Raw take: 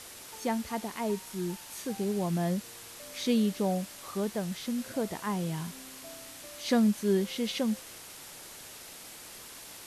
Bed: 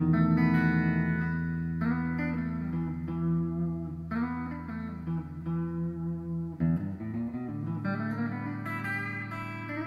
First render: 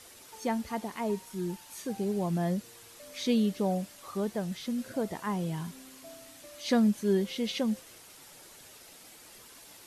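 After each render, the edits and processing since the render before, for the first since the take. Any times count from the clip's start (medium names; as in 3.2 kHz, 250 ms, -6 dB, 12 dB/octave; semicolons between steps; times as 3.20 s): noise reduction 7 dB, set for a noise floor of -47 dBFS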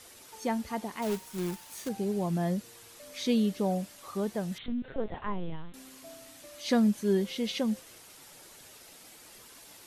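1.02–1.89 s: companded quantiser 4-bit; 4.58–5.74 s: LPC vocoder at 8 kHz pitch kept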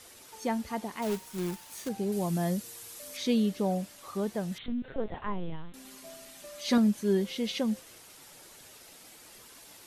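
2.12–3.17 s: treble shelf 5.8 kHz +11 dB; 5.84–6.78 s: comb 5 ms, depth 73%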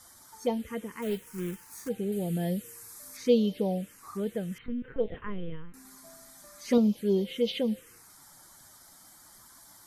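small resonant body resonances 480/3100 Hz, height 12 dB, ringing for 65 ms; touch-sensitive phaser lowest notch 440 Hz, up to 1.7 kHz, full sweep at -21 dBFS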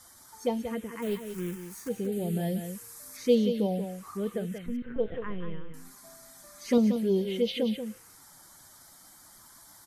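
delay 182 ms -8.5 dB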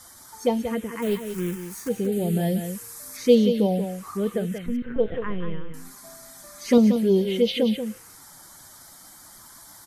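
trim +6.5 dB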